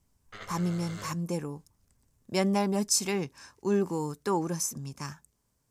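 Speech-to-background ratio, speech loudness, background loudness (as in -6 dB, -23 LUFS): 15.5 dB, -30.5 LUFS, -46.0 LUFS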